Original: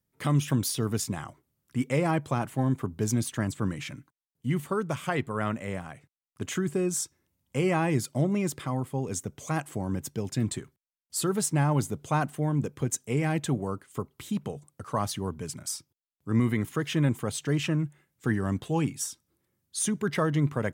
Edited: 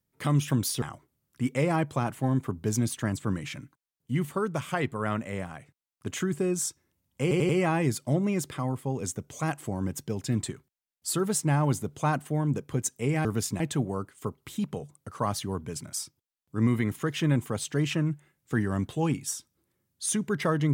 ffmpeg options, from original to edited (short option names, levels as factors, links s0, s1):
-filter_complex "[0:a]asplit=7[s0][s1][s2][s3][s4][s5][s6];[s0]atrim=end=0.822[s7];[s1]atrim=start=1.168:end=7.662[s8];[s2]atrim=start=7.568:end=7.662[s9];[s3]atrim=start=7.568:end=7.662[s10];[s4]atrim=start=7.568:end=13.332[s11];[s5]atrim=start=0.818:end=1.172[s12];[s6]atrim=start=13.328[s13];[s7][s8]acrossfade=d=0.004:c1=hsin:c2=hsin[s14];[s14][s9]acrossfade=d=0.004:c1=hsin:c2=hsin[s15];[s15][s10]acrossfade=d=0.004:c1=hsin:c2=hsin[s16];[s16][s11]acrossfade=d=0.004:c1=hsin:c2=hsin[s17];[s17][s12]acrossfade=d=0.004:c1=hsin:c2=hsin[s18];[s18][s13]acrossfade=d=0.004:c1=hsin:c2=hsin"